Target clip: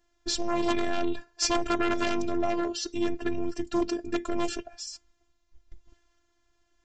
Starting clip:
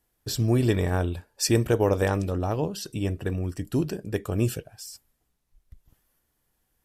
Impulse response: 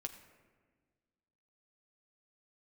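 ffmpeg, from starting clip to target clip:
-af "aresample=16000,aeval=exprs='0.316*sin(PI/2*3.55*val(0)/0.316)':c=same,aresample=44100,afftfilt=real='hypot(re,im)*cos(PI*b)':imag='0':win_size=512:overlap=0.75,volume=-7.5dB"

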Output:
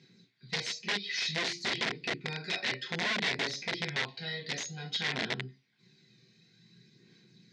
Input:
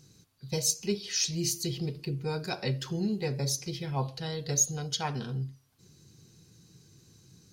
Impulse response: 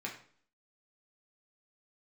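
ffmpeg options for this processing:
-filter_complex "[0:a]aphaser=in_gain=1:out_gain=1:delay=1.7:decay=0.41:speed=0.56:type=sinusoidal[a];[1:a]atrim=start_sample=2205,afade=t=out:st=0.13:d=0.01,atrim=end_sample=6174[b];[a][b]afir=irnorm=-1:irlink=0,aeval=exprs='(mod(15.8*val(0)+1,2)-1)/15.8':c=same,highpass=260,equalizer=f=320:t=q:w=4:g=-7,equalizer=f=570:t=q:w=4:g=-9,equalizer=f=830:t=q:w=4:g=-7,equalizer=f=1.2k:t=q:w=4:g=-10,equalizer=f=2k:t=q:w=4:g=8,equalizer=f=3.7k:t=q:w=4:g=5,lowpass=f=5.3k:w=0.5412,lowpass=f=5.3k:w=1.3066"

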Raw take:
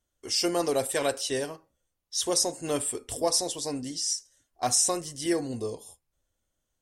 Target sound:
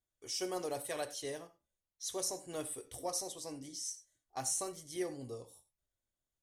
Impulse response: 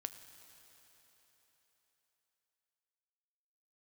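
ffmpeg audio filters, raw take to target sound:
-filter_complex "[0:a]asetrate=46746,aresample=44100[a];[1:a]atrim=start_sample=2205,atrim=end_sample=6174,asetrate=57330,aresample=44100[b];[a][b]afir=irnorm=-1:irlink=0,volume=-6.5dB"

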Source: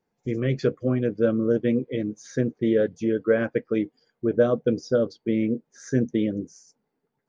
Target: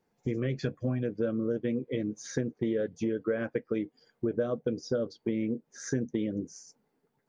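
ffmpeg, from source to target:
-filter_complex "[0:a]asettb=1/sr,asplit=3[a][b][c];[a]atrim=end=0.634[d];[b]atrim=start=0.63:end=1.03,asetpts=PTS-STARTPTS,afade=t=in:d=0.004:c=qsin,afade=t=out:st=0.396:d=0.004:c=qsin,aecho=1:1:1.2:0.58,atrim=end_sample=17640[e];[c]atrim=start=1.026[f];[d][e]acrossfade=d=0.004:c1=hsin:c2=qsin[g];[g][f]acrossfade=d=0.004:c1=qsin:c2=hsin,acompressor=threshold=-31dB:ratio=4,volume=2.5dB"

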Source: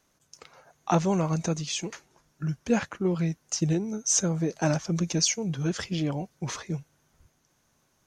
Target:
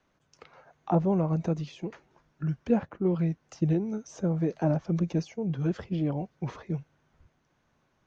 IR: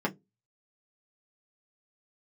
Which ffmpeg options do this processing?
-filter_complex "[0:a]lowpass=3k,acrossover=split=590|830[a][b][c];[c]acompressor=threshold=-49dB:ratio=6[d];[a][b][d]amix=inputs=3:normalize=0"

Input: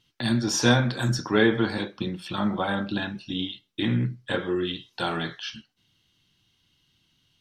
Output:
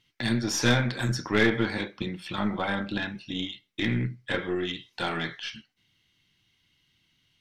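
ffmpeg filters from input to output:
-af "equalizer=f=2.1k:t=o:w=0.44:g=10,aeval=exprs='0.668*(cos(1*acos(clip(val(0)/0.668,-1,1)))-cos(1*PI/2))+0.0299*(cos(8*acos(clip(val(0)/0.668,-1,1)))-cos(8*PI/2))':c=same,aeval=exprs='clip(val(0),-1,0.119)':c=same,volume=-3dB"

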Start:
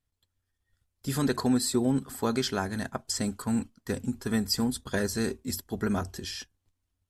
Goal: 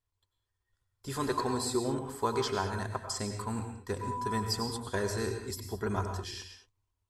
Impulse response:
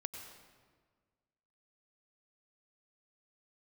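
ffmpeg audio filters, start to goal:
-filter_complex "[0:a]asettb=1/sr,asplit=3[a][b][c];[a]atrim=end=4.014[d];[b]atrim=start=4.01:end=4.41,asetpts=PTS-STARTPTS,afade=t=in:d=0.004:c=qsin,afade=t=out:st=0.396:d=0.004:c=qsin,aeval=exprs='val(0)+0.00794*sin(2*PI*990*n/s)':c=same[e];[c]atrim=start=4.406[f];[d][e]acrossfade=d=0.004:c1=hsin:c2=qsin[g];[g][f]acrossfade=d=0.004:c1=qsin:c2=hsin,equalizer=f=100:t=o:w=0.33:g=6,equalizer=f=160:t=o:w=0.33:g=-9,equalizer=f=250:t=o:w=0.33:g=-8,equalizer=f=400:t=o:w=0.33:g=5,equalizer=f=1k:t=o:w=0.33:g=11,equalizer=f=12.5k:t=o:w=0.33:g=-7[h];[1:a]atrim=start_sample=2205,afade=t=out:st=0.28:d=0.01,atrim=end_sample=12789[i];[h][i]afir=irnorm=-1:irlink=0,volume=-2dB"

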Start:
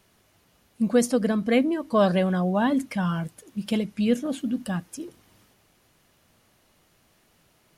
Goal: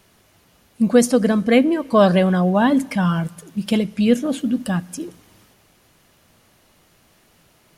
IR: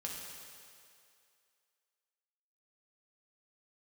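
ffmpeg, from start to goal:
-filter_complex "[0:a]asplit=2[a][b];[1:a]atrim=start_sample=2205,afade=t=out:st=0.45:d=0.01,atrim=end_sample=20286[c];[b][c]afir=irnorm=-1:irlink=0,volume=-20dB[d];[a][d]amix=inputs=2:normalize=0,volume=6dB"

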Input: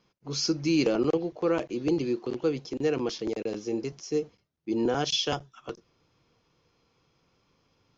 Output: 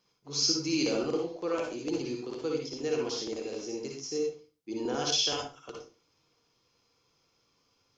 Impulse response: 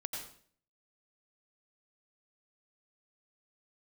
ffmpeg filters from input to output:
-filter_complex "[0:a]bass=f=250:g=-5,treble=f=4k:g=10[a];[1:a]atrim=start_sample=2205,asetrate=70560,aresample=44100[b];[a][b]afir=irnorm=-1:irlink=0" -ar 44100 -c:a nellymoser

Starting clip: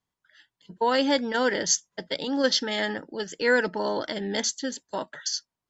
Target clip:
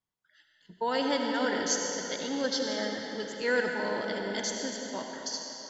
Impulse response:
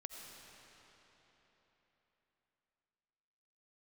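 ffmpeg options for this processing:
-filter_complex "[0:a]asettb=1/sr,asplit=3[a][b][c];[a]atrim=end=2.344[d];[b]atrim=start=2.34:end=3.03,asetpts=PTS-STARTPTS,afade=t=in:d=0.004:c=qsin,afade=t=out:st=0.686:d=0.004:c=qsin,equalizer=f=2.6k:w=2.2:g=-10[e];[c]atrim=start=3.026[f];[d][e]acrossfade=d=0.004:c1=hsin:c2=qsin[g];[g][f]acrossfade=d=0.004:c1=qsin:c2=hsin[h];[1:a]atrim=start_sample=2205,asetrate=48510,aresample=44100[i];[h][i]afir=irnorm=-1:irlink=0"

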